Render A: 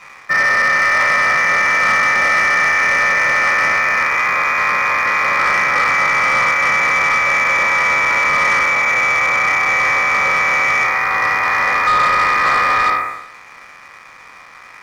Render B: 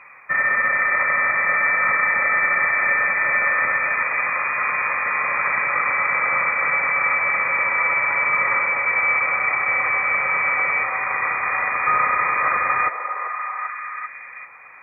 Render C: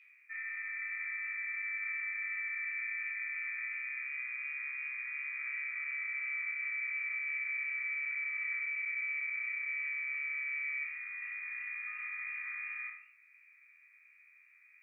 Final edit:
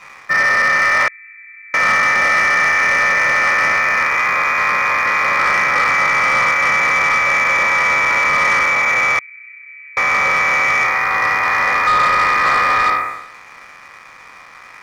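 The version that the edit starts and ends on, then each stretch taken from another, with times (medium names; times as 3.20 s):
A
1.08–1.74 s: from C
9.19–9.97 s: from C
not used: B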